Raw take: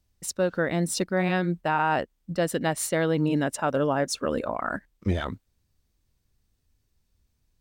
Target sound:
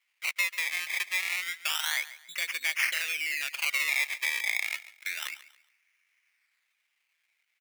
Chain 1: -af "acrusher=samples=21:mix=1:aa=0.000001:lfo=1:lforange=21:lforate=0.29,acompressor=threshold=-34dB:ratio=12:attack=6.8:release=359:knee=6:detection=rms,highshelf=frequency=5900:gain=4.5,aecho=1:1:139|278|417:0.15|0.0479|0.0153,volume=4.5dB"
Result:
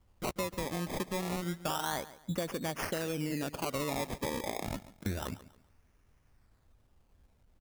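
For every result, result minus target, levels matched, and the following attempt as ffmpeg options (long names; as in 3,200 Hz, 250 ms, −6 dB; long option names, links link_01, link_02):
2,000 Hz band −8.5 dB; downward compressor: peak gain reduction +6 dB
-af "acrusher=samples=21:mix=1:aa=0.000001:lfo=1:lforange=21:lforate=0.29,acompressor=threshold=-34dB:ratio=12:attack=6.8:release=359:knee=6:detection=rms,highpass=frequency=2200:width_type=q:width=5.1,highshelf=frequency=5900:gain=4.5,aecho=1:1:139|278|417:0.15|0.0479|0.0153,volume=4.5dB"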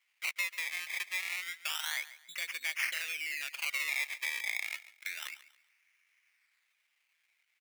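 downward compressor: peak gain reduction +6 dB
-af "acrusher=samples=21:mix=1:aa=0.000001:lfo=1:lforange=21:lforate=0.29,acompressor=threshold=-27.5dB:ratio=12:attack=6.8:release=359:knee=6:detection=rms,highpass=frequency=2200:width_type=q:width=5.1,highshelf=frequency=5900:gain=4.5,aecho=1:1:139|278|417:0.15|0.0479|0.0153,volume=4.5dB"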